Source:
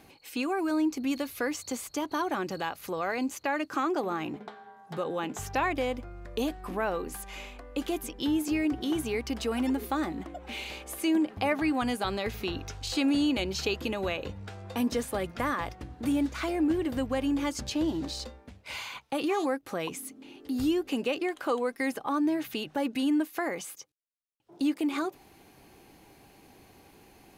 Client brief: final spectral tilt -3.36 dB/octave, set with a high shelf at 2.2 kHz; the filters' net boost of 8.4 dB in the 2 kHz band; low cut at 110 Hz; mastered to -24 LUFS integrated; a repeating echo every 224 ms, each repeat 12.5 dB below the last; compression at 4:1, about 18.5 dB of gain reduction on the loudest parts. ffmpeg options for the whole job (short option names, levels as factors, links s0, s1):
-af "highpass=110,equalizer=f=2000:t=o:g=6.5,highshelf=f=2200:g=7,acompressor=threshold=0.00708:ratio=4,aecho=1:1:224|448|672:0.237|0.0569|0.0137,volume=8.91"